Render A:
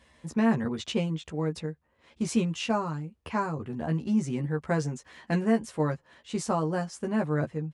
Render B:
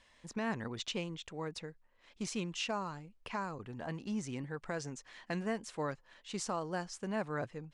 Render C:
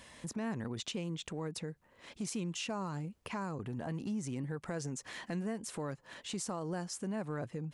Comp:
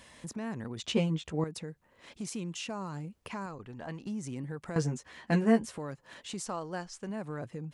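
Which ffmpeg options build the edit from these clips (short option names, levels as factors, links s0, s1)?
-filter_complex "[0:a]asplit=2[s0][s1];[1:a]asplit=2[s2][s3];[2:a]asplit=5[s4][s5][s6][s7][s8];[s4]atrim=end=0.842[s9];[s0]atrim=start=0.838:end=1.442[s10];[s5]atrim=start=1.438:end=3.462[s11];[s2]atrim=start=3.458:end=4.062[s12];[s6]atrim=start=4.058:end=4.762[s13];[s1]atrim=start=4.758:end=5.782[s14];[s7]atrim=start=5.778:end=6.462[s15];[s3]atrim=start=6.458:end=7.092[s16];[s8]atrim=start=7.088[s17];[s9][s10]acrossfade=d=0.004:c1=hsin:c2=hsin[s18];[s18][s11]acrossfade=d=0.004:c1=hsin:c2=hsin[s19];[s19][s12]acrossfade=d=0.004:c1=hsin:c2=hsin[s20];[s20][s13]acrossfade=d=0.004:c1=hsin:c2=hsin[s21];[s21][s14]acrossfade=d=0.004:c1=hsin:c2=hsin[s22];[s22][s15]acrossfade=d=0.004:c1=hsin:c2=hsin[s23];[s23][s16]acrossfade=d=0.004:c1=hsin:c2=hsin[s24];[s24][s17]acrossfade=d=0.004:c1=hsin:c2=hsin"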